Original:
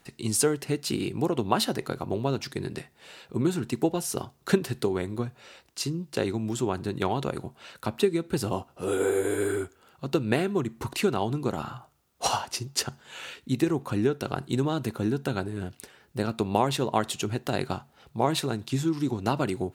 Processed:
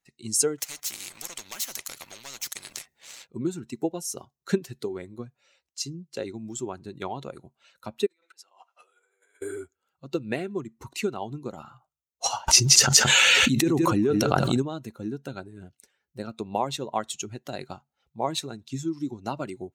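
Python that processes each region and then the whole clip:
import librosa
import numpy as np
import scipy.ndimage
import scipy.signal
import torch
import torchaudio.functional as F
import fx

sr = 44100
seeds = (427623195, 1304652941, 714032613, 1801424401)

y = fx.chain(x, sr, fx.leveller(passes=2),
    fx.spectral_comp(ratio=4.0), at=(0.58, 3.27))
y = fx.chain(y, sr, fx.over_compress(threshold_db=-38.0, ratio=-1.0),
    fx.highpass(hz=1000.0, slope=12),
    fx.high_shelf(hz=7000.0, db=-12.0), at=(8.06, 9.42))
y = fx.chain(y, sr, fx.echo_single(ms=173, db=-10.5),
    fx.env_flatten(amount_pct=100), at=(12.48, 14.62))
y = fx.bin_expand(y, sr, power=1.5)
y = fx.graphic_eq_15(y, sr, hz=(100, 2500, 6300), db=(-4, 4, 10))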